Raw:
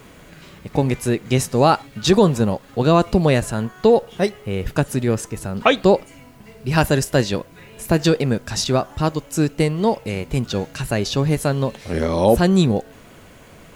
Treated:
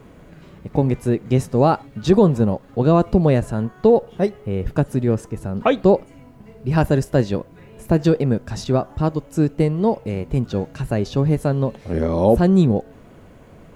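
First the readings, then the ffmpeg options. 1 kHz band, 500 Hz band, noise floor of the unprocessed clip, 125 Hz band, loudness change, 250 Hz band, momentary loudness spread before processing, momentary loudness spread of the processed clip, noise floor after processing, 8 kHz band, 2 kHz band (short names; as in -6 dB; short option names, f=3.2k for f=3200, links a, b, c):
-2.5 dB, 0.0 dB, -45 dBFS, +1.5 dB, 0.0 dB, +1.0 dB, 9 LU, 9 LU, -46 dBFS, -12.0 dB, -7.0 dB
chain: -af "tiltshelf=f=1.4k:g=7,volume=-5.5dB"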